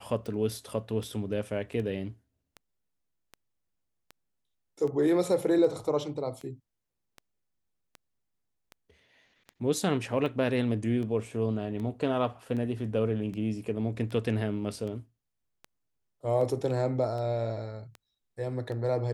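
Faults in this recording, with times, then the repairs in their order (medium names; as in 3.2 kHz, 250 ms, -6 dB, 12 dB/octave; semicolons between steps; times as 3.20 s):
tick 78 rpm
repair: de-click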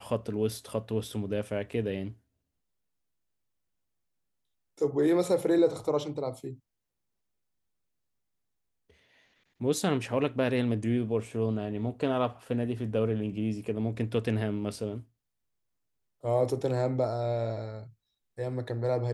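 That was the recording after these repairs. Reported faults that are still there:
nothing left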